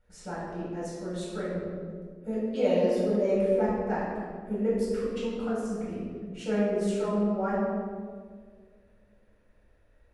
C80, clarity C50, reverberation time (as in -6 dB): 0.5 dB, -1.5 dB, 1.8 s